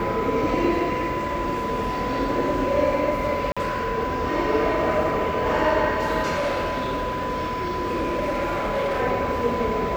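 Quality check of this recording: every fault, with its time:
whistle 1,000 Hz −27 dBFS
0:03.52–0:03.57: drop-out 46 ms
0:06.35–0:09.01: clipping −20.5 dBFS

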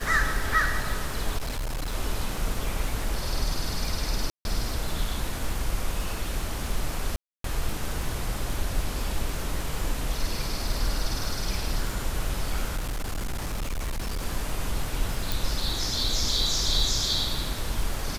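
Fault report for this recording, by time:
surface crackle 57 per second −31 dBFS
0:01.37–0:01.94: clipping −26.5 dBFS
0:04.30–0:04.45: drop-out 151 ms
0:07.16–0:07.44: drop-out 283 ms
0:12.76–0:14.26: clipping −26 dBFS
0:15.32: click

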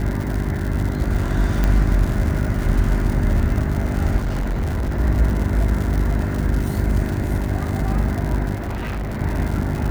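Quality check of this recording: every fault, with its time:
surface crackle 160 per second −24 dBFS
mains hum 50 Hz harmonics 8 −24 dBFS
0:01.64: click −7 dBFS
0:04.17–0:05.00: clipping −18.5 dBFS
0:08.54–0:09.22: clipping −22.5 dBFS

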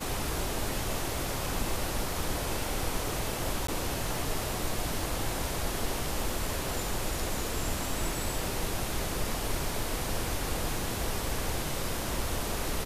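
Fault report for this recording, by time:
0:03.67–0:03.68: drop-out 14 ms

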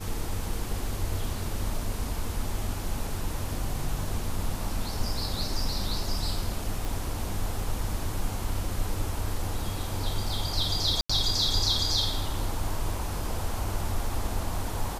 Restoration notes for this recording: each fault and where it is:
0:06.85: click
0:11.01–0:11.10: drop-out 85 ms

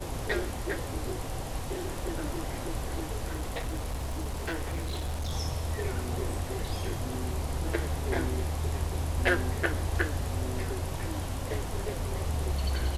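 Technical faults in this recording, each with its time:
0:03.29–0:05.33: clipping −28.5 dBFS

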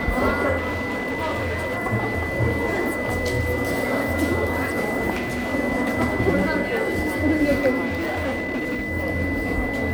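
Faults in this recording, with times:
whistle 2,000 Hz −28 dBFS
0:00.57–0:01.78: clipping −21.5 dBFS
0:05.10–0:05.54: clipping −22.5 dBFS
0:07.85–0:08.87: clipping −21.5 dBFS

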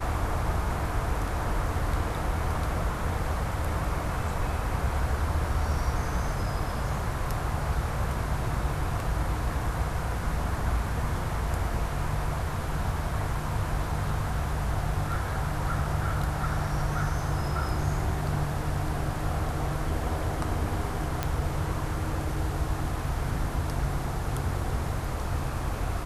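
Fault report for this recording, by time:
0:21.23: click −12 dBFS

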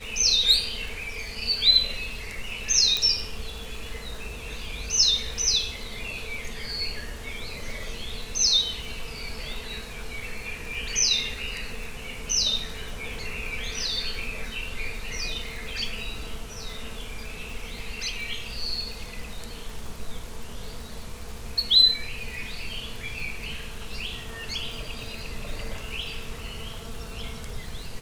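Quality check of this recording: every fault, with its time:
surface crackle 150 per second −37 dBFS
0:02.97: click −11 dBFS

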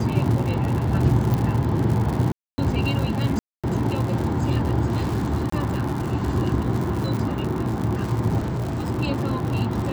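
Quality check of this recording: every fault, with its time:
surface crackle 130 per second −26 dBFS
0:01.34: click
0:02.32–0:02.58: drop-out 260 ms
0:03.39–0:03.64: drop-out 246 ms
0:05.50–0:05.52: drop-out 24 ms
0:08.38–0:08.86: clipping −22.5 dBFS

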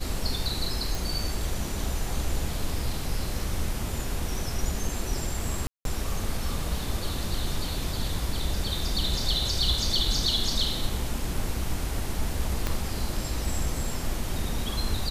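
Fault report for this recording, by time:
0:00.95: click
0:05.67–0:05.85: drop-out 182 ms
0:12.67: click −12 dBFS

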